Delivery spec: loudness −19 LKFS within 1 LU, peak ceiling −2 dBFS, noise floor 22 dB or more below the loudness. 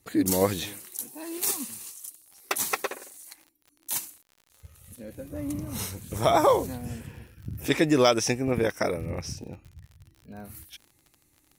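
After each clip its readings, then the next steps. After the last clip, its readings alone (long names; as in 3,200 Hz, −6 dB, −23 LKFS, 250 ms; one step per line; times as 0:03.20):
crackle rate 40 per second; integrated loudness −27.0 LKFS; sample peak −8.5 dBFS; target loudness −19.0 LKFS
→ click removal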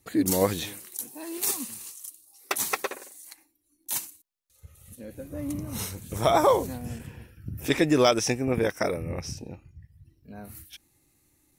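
crackle rate 0.35 per second; integrated loudness −27.0 LKFS; sample peak −8.5 dBFS; target loudness −19.0 LKFS
→ level +8 dB
brickwall limiter −2 dBFS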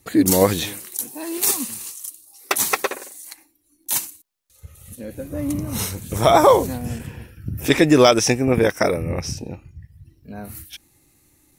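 integrated loudness −19.5 LKFS; sample peak −2.0 dBFS; background noise floor −62 dBFS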